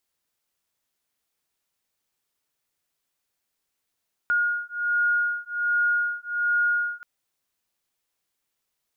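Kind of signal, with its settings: beating tones 1430 Hz, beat 1.3 Hz, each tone -24.5 dBFS 2.73 s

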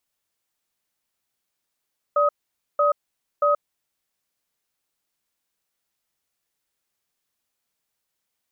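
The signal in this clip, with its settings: cadence 584 Hz, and 1260 Hz, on 0.13 s, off 0.50 s, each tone -18.5 dBFS 1.70 s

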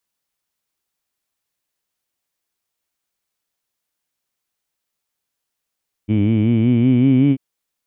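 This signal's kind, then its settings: formant-synthesis vowel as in heed, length 1.29 s, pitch 102 Hz, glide +5.5 st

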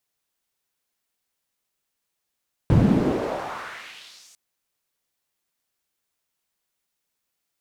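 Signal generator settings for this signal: swept filtered noise pink, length 1.65 s bandpass, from 130 Hz, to 7400 Hz, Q 1.9, exponential, gain ramp -39 dB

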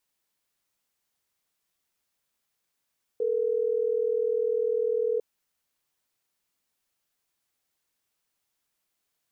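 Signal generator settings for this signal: call progress tone ringback tone, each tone -26 dBFS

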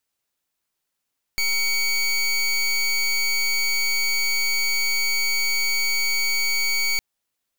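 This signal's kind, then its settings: pulse 2250 Hz, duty 22% -21.5 dBFS 5.61 s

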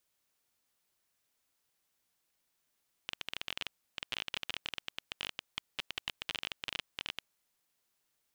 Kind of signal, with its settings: random clicks 20/s -18.5 dBFS 4.11 s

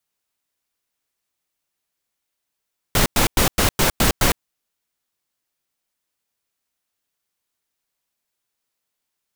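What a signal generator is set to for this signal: noise bursts pink, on 0.11 s, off 0.10 s, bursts 7, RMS -16 dBFS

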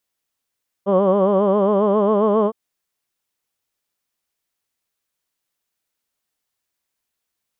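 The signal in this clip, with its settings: formant vowel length 1.66 s, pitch 191 Hz, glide +2 st, vibrato 7.4 Hz, vibrato depth 0.9 st, F1 520 Hz, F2 1100 Hz, F3 3100 Hz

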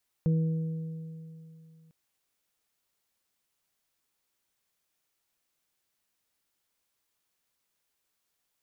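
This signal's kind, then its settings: additive tone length 1.65 s, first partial 161 Hz, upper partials -17.5/-14 dB, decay 2.81 s, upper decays 1.88/2.41 s, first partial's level -21 dB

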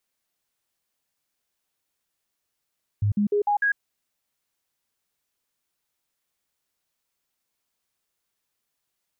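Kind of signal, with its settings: stepped sine 103 Hz up, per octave 1, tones 5, 0.10 s, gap 0.05 s -18.5 dBFS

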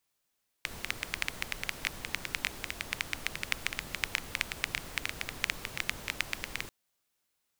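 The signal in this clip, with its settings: rain from filtered ticks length 6.04 s, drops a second 9.9, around 2200 Hz, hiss -6 dB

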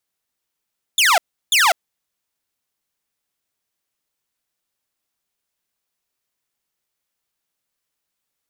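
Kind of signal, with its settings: burst of laser zaps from 3700 Hz, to 630 Hz, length 0.20 s saw, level -9 dB, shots 2, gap 0.34 s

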